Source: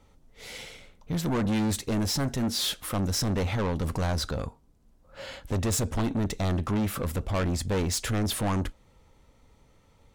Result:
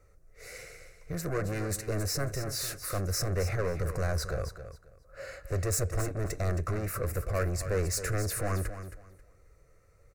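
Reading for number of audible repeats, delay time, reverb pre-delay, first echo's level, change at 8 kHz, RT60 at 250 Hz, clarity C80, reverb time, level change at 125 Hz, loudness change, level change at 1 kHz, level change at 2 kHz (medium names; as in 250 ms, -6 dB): 2, 269 ms, no reverb, -11.0 dB, -1.5 dB, no reverb, no reverb, no reverb, -2.5 dB, -4.0 dB, -5.0 dB, -1.0 dB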